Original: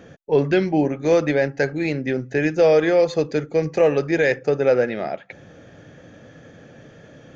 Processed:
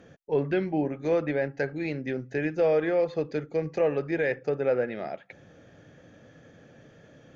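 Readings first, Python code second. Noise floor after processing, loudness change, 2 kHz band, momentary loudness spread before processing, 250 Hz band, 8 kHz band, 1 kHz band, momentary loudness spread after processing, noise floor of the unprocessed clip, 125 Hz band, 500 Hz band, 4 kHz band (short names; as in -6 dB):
-55 dBFS, -8.0 dB, -8.5 dB, 8 LU, -8.0 dB, n/a, -8.0 dB, 8 LU, -47 dBFS, -8.0 dB, -8.0 dB, under -10 dB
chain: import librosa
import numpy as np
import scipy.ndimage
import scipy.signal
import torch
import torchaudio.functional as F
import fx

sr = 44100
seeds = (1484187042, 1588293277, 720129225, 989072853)

y = fx.env_lowpass_down(x, sr, base_hz=2800.0, full_db=-15.5)
y = F.gain(torch.from_numpy(y), -8.0).numpy()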